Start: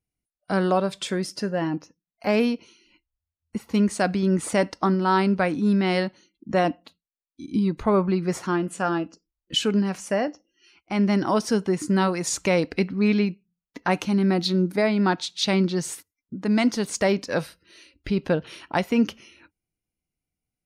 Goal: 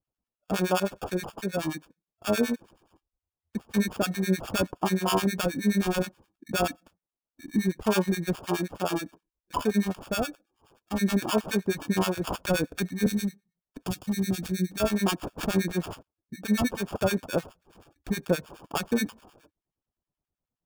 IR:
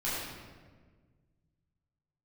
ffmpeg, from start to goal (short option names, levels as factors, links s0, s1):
-filter_complex "[0:a]acrusher=samples=22:mix=1:aa=0.000001,asettb=1/sr,asplit=3[s0][s1][s2];[s0]atrim=end=13.064[s3];[s1]atrim=start=13.06:end=14.8,asetpts=PTS-STARTPTS,afade=t=in:d=0.004:c=qsin,afade=t=out:st=1.736:d=0.004:c=qsin,acrossover=split=260|3000[s4][s5][s6];[s5]acompressor=threshold=0.0178:ratio=6[s7];[s4][s7][s6]amix=inputs=3:normalize=0[s8];[s2]atrim=start=14.796[s9];[s3][s8]acrossfade=d=0.004:c1=hsin:c2=qsin[s10];[s10][s9]acrossfade=d=0.004:c1=qsin:c2=hsin,acrossover=split=1100[s11][s12];[s11]aeval=exprs='val(0)*(1-1/2+1/2*cos(2*PI*9.5*n/s))':c=same[s13];[s12]aeval=exprs='val(0)*(1-1/2-1/2*cos(2*PI*9.5*n/s))':c=same[s14];[s13][s14]amix=inputs=2:normalize=0"